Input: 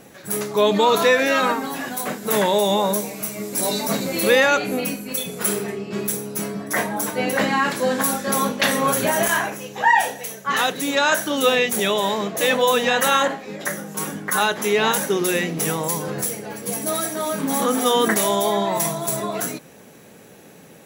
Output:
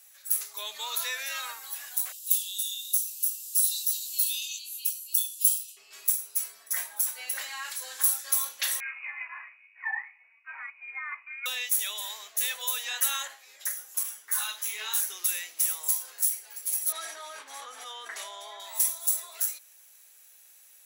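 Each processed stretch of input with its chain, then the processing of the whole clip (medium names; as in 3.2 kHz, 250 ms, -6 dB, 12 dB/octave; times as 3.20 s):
2.12–5.77 s: steep high-pass 2.7 kHz 96 dB/octave + doubling 21 ms -6 dB
8.80–11.46 s: frequency inversion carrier 2.7 kHz + upward expansion, over -32 dBFS
14.03–15.01 s: flutter echo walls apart 3.2 m, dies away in 0.26 s + three-phase chorus
16.92–18.60 s: high-pass 230 Hz 24 dB/octave + tape spacing loss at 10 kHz 26 dB + level flattener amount 100%
whole clip: high-pass 740 Hz 12 dB/octave; differentiator; trim -3 dB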